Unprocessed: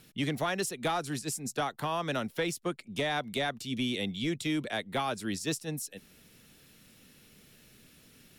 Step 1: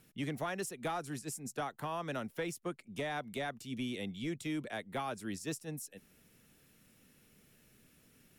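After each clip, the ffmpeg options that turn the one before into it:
-af "equalizer=f=4000:w=1.4:g=-6.5,volume=0.501"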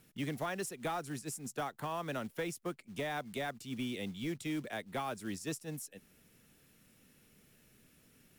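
-af "acrusher=bits=5:mode=log:mix=0:aa=0.000001"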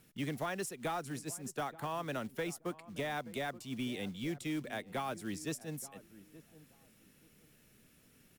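-filter_complex "[0:a]asplit=2[s0][s1];[s1]adelay=877,lowpass=f=940:p=1,volume=0.15,asplit=2[s2][s3];[s3]adelay=877,lowpass=f=940:p=1,volume=0.24[s4];[s0][s2][s4]amix=inputs=3:normalize=0"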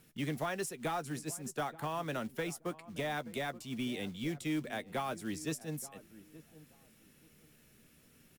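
-filter_complex "[0:a]asplit=2[s0][s1];[s1]adelay=13,volume=0.224[s2];[s0][s2]amix=inputs=2:normalize=0,volume=1.12"

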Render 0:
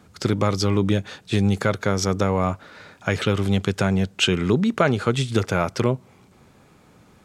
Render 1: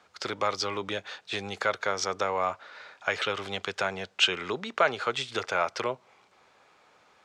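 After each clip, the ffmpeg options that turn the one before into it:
-filter_complex "[0:a]acrossover=split=500 6500:gain=0.0708 1 0.126[s0][s1][s2];[s0][s1][s2]amix=inputs=3:normalize=0,volume=0.841"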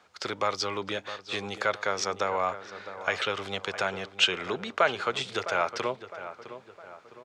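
-filter_complex "[0:a]asplit=2[s0][s1];[s1]adelay=659,lowpass=f=2000:p=1,volume=0.251,asplit=2[s2][s3];[s3]adelay=659,lowpass=f=2000:p=1,volume=0.48,asplit=2[s4][s5];[s5]adelay=659,lowpass=f=2000:p=1,volume=0.48,asplit=2[s6][s7];[s7]adelay=659,lowpass=f=2000:p=1,volume=0.48,asplit=2[s8][s9];[s9]adelay=659,lowpass=f=2000:p=1,volume=0.48[s10];[s0][s2][s4][s6][s8][s10]amix=inputs=6:normalize=0"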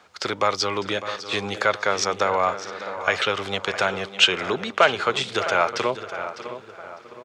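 -af "aecho=1:1:603|1206:0.211|0.0359,volume=2.11"

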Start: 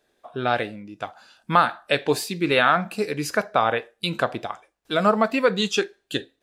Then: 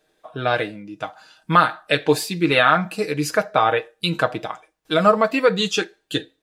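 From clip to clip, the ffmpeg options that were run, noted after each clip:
-af "aecho=1:1:6.4:0.59,volume=1.19"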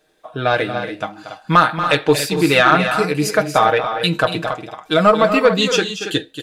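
-af "acontrast=31,aecho=1:1:233.2|282.8:0.282|0.316,volume=0.891"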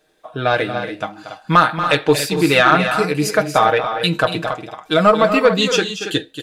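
-af anull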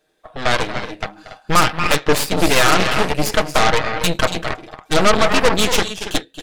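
-af "aeval=exprs='0.891*(cos(1*acos(clip(val(0)/0.891,-1,1)))-cos(1*PI/2))+0.316*(cos(8*acos(clip(val(0)/0.891,-1,1)))-cos(8*PI/2))':c=same,volume=0.596"

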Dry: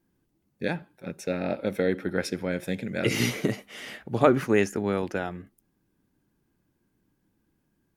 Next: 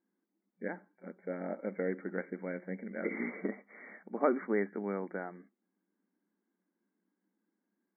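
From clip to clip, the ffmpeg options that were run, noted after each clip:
-af "afftfilt=real='re*between(b*sr/4096,180,2300)':imag='im*between(b*sr/4096,180,2300)':win_size=4096:overlap=0.75,volume=0.355"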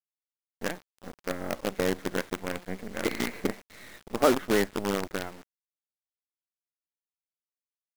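-af "acrusher=bits=6:dc=4:mix=0:aa=0.000001,volume=2.11"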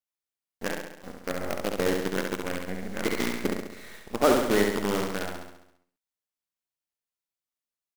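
-af "aecho=1:1:68|136|204|272|340|408|476|544:0.631|0.353|0.198|0.111|0.0621|0.0347|0.0195|0.0109"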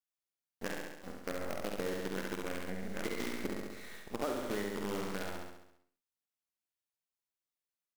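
-filter_complex "[0:a]asplit=2[s0][s1];[s1]adelay=48,volume=0.447[s2];[s0][s2]amix=inputs=2:normalize=0,acompressor=threshold=0.0398:ratio=6,volume=0.562"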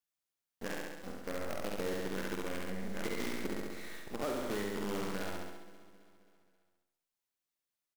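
-af "asoftclip=type=tanh:threshold=0.0316,aecho=1:1:266|532|798|1064|1330:0.126|0.0705|0.0395|0.0221|0.0124,volume=1.26"

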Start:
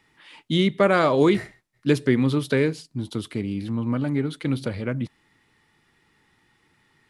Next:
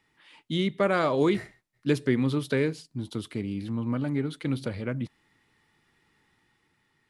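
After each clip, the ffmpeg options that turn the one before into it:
-af "dynaudnorm=f=110:g=13:m=1.41,volume=0.447"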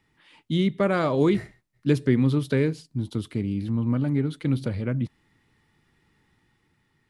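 -af "lowshelf=f=260:g=9.5,volume=0.891"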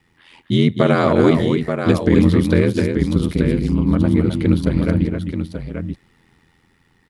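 -af "aecho=1:1:260|882:0.473|0.422,aeval=exprs='val(0)*sin(2*PI*42*n/s)':c=same,alimiter=level_in=3.76:limit=0.891:release=50:level=0:latency=1,volume=0.891"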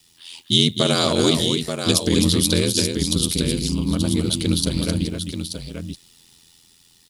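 -af "aexciter=amount=10.8:drive=6.3:freq=3000,volume=0.531"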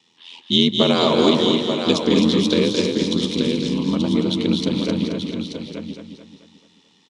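-af "highpass=210,equalizer=f=220:t=q:w=4:g=7,equalizer=f=460:t=q:w=4:g=4,equalizer=f=960:t=q:w=4:g=7,equalizer=f=1500:t=q:w=4:g=-5,equalizer=f=4700:t=q:w=4:g=-10,lowpass=f=5300:w=0.5412,lowpass=f=5300:w=1.3066,aecho=1:1:218|436|654|872|1090:0.473|0.218|0.1|0.0461|0.0212,volume=1.12"

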